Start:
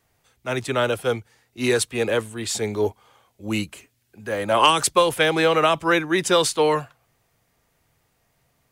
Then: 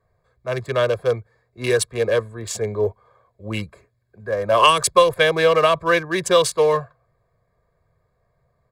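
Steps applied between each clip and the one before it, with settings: local Wiener filter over 15 samples; comb 1.8 ms, depth 73%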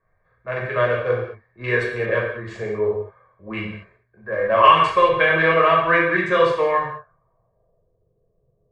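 low-pass sweep 1.9 kHz -> 430 Hz, 6.72–7.94 s; gated-style reverb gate 250 ms falling, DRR -4.5 dB; trim -6.5 dB

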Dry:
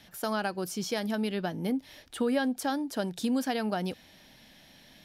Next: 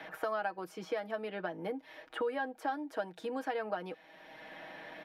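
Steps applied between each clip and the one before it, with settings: three-band isolator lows -19 dB, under 360 Hz, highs -20 dB, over 2.4 kHz; comb 6.3 ms, depth 62%; three bands compressed up and down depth 70%; trim -3.5 dB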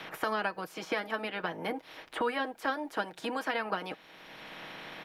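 spectral peaks clipped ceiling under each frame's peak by 16 dB; trim +3.5 dB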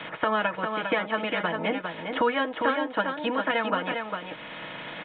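comb of notches 390 Hz; delay 403 ms -5.5 dB; resampled via 8 kHz; trim +7.5 dB

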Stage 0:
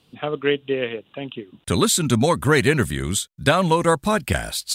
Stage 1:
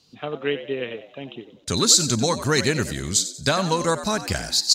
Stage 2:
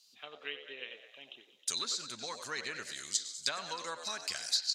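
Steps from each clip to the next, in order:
high-order bell 5.4 kHz +14.5 dB 1 oct; band-stop 3.4 kHz, Q 26; on a send: frequency-shifting echo 92 ms, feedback 37%, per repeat +79 Hz, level -12.5 dB; on the sum: trim -4.5 dB
low-pass that closes with the level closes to 2 kHz, closed at -16 dBFS; differentiator; repeats whose band climbs or falls 105 ms, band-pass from 550 Hz, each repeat 1.4 oct, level -7 dB

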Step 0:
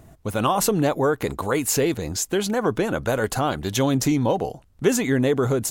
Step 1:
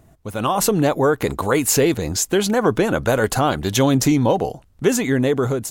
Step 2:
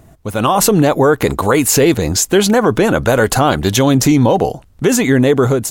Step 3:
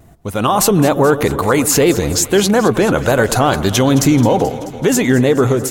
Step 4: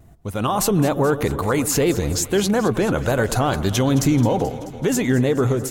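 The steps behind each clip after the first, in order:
level rider gain up to 11.5 dB; trim -3.5 dB
loudness maximiser +9 dB; trim -1.5 dB
vibrato 2.3 Hz 58 cents; echo whose repeats swap between lows and highs 108 ms, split 1.3 kHz, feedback 81%, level -13 dB; trim -1 dB
bass shelf 140 Hz +7 dB; trim -7.5 dB

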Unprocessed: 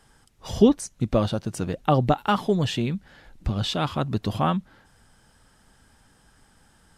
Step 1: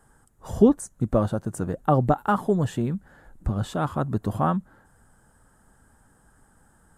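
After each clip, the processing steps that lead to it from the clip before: high-order bell 3.5 kHz -14.5 dB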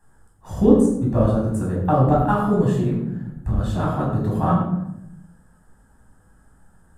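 in parallel at -10 dB: crossover distortion -38 dBFS; on the sum: reverberation RT60 0.80 s, pre-delay 11 ms, DRR -5 dB; trim -8.5 dB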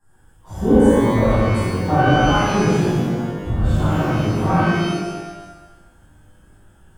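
pitch-shifted reverb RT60 1.1 s, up +12 st, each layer -8 dB, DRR -10 dB; trim -8 dB

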